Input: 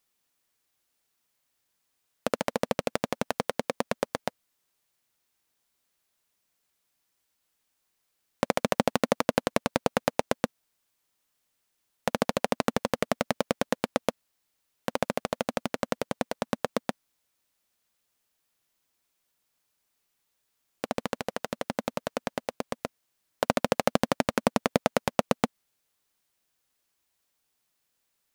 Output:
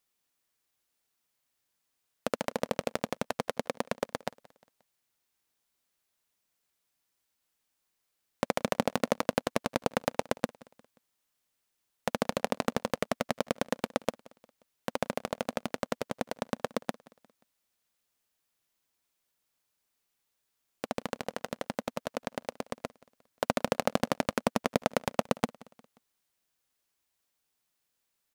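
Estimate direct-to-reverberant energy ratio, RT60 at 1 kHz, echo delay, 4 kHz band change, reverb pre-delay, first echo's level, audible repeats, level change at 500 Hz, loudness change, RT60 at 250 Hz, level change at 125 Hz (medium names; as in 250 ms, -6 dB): no reverb, no reverb, 177 ms, -3.5 dB, no reverb, -23.0 dB, 2, -3.5 dB, -3.5 dB, no reverb, -3.5 dB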